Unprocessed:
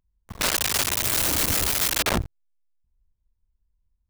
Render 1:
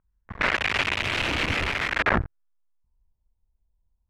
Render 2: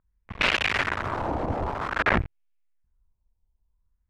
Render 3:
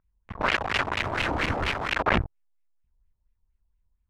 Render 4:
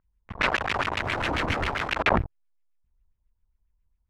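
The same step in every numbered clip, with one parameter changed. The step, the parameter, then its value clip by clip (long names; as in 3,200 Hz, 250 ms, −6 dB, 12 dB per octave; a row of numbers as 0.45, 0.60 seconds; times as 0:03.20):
auto-filter low-pass, speed: 0.21, 0.51, 4.3, 7.4 Hertz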